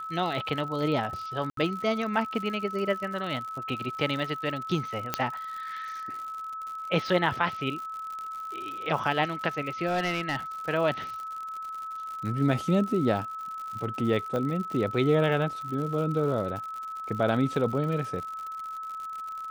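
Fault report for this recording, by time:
crackle 95 per s -35 dBFS
whine 1.3 kHz -34 dBFS
1.50–1.57 s: dropout 73 ms
5.14 s: pop -9 dBFS
9.86–10.36 s: clipped -22.5 dBFS
14.36 s: pop -19 dBFS

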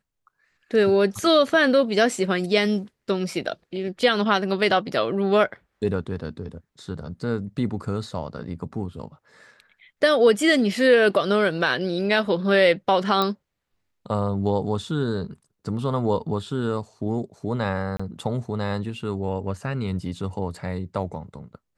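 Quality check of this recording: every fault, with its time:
13.22 s: pop -10 dBFS
17.97–18.00 s: dropout 25 ms

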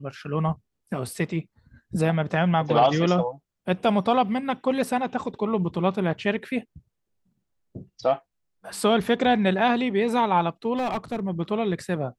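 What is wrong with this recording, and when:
10.76–11.20 s: clipped -22.5 dBFS

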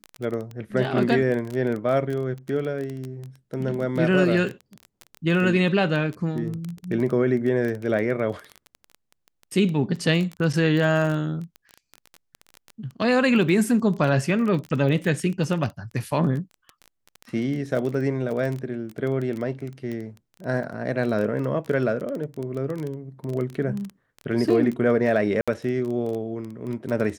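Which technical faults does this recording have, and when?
crackle 18 per s -27 dBFS
25.41–25.48 s: dropout 66 ms

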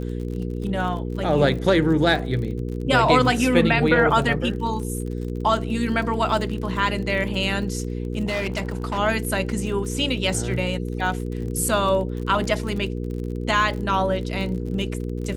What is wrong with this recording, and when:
crackle 40 per s -31 dBFS
hum 60 Hz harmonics 8 -28 dBFS
8.25–8.99 s: clipped -21.5 dBFS

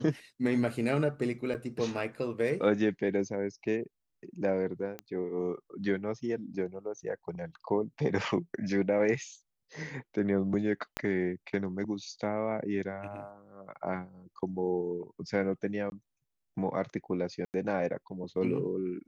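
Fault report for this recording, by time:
1.54–1.55 s: dropout 7.4 ms
4.99 s: pop -24 dBFS
10.97 s: pop -16 dBFS
15.90–15.92 s: dropout 21 ms
17.45–17.54 s: dropout 89 ms

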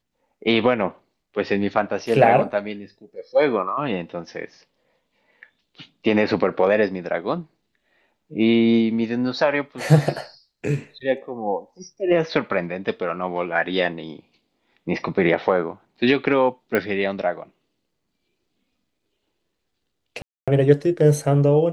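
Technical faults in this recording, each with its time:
16.75 s: pop -9 dBFS
20.22–20.48 s: dropout 256 ms

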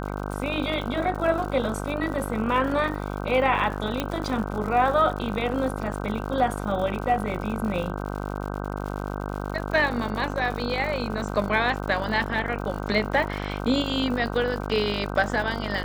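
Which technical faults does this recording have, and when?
buzz 50 Hz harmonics 31 -31 dBFS
crackle 120 per s -33 dBFS
4.00 s: pop -11 dBFS

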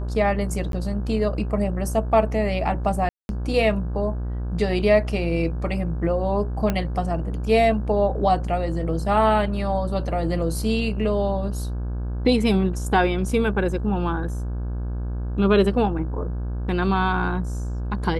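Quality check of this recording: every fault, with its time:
buzz 60 Hz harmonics 28 -27 dBFS
0.72–0.73 s: dropout 12 ms
3.09–3.29 s: dropout 201 ms
6.70 s: pop -10 dBFS

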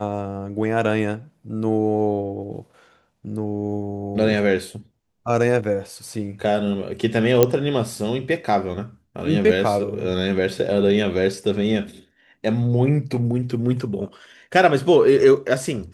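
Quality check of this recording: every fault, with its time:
7.43 s: pop -1 dBFS

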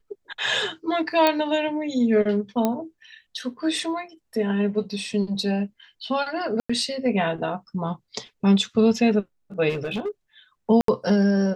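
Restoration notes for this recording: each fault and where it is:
1.27 s: pop -6 dBFS
2.65 s: pop -9 dBFS
6.60–6.70 s: dropout 95 ms
9.69–10.09 s: clipped -23 dBFS
10.81–10.88 s: dropout 73 ms

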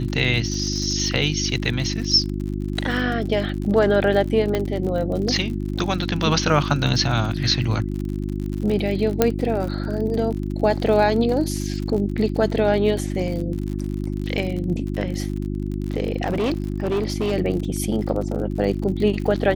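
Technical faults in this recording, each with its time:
crackle 56 per s -28 dBFS
hum 50 Hz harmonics 7 -26 dBFS
4.55 s: pop -10 dBFS
9.22 s: pop -2 dBFS
16.22–17.33 s: clipped -18 dBFS

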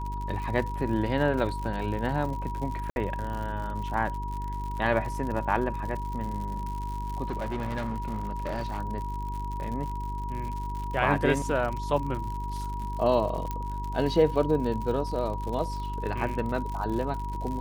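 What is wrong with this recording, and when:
crackle 98 per s -34 dBFS
hum 50 Hz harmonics 8 -34 dBFS
whine 960 Hz -35 dBFS
2.90–2.96 s: dropout 61 ms
7.30–8.80 s: clipped -27 dBFS
13.51 s: pop -18 dBFS

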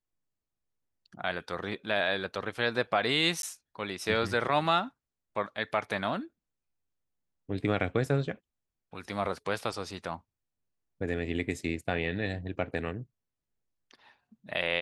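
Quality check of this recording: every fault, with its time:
3.42–3.43 s: dropout

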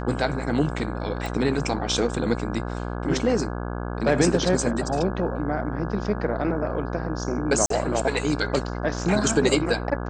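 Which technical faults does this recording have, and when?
buzz 60 Hz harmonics 28 -30 dBFS
1.26 s: pop
7.66–7.70 s: dropout 43 ms

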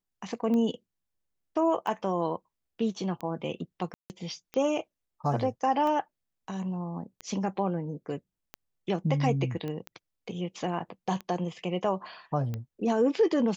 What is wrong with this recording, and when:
tick 45 rpm -22 dBFS
3.94–4.10 s: dropout 159 ms
9.68 s: pop -24 dBFS

